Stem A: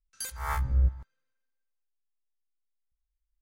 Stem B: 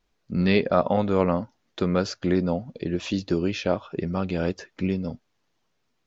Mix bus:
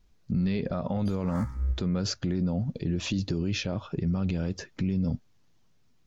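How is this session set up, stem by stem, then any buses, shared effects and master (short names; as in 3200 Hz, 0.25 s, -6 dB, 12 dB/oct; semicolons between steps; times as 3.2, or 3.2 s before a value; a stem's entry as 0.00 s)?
+2.0 dB, 0.85 s, no send, echo send -20 dB, low-pass opened by the level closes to 2800 Hz, open at -26 dBFS; endless phaser +1.1 Hz; auto duck -7 dB, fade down 1.90 s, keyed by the second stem
-1.0 dB, 0.00 s, no send, no echo send, tone controls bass +13 dB, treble +5 dB; limiter -12 dBFS, peak gain reduction 9.5 dB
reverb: off
echo: feedback echo 64 ms, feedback 56%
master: limiter -19.5 dBFS, peak gain reduction 7 dB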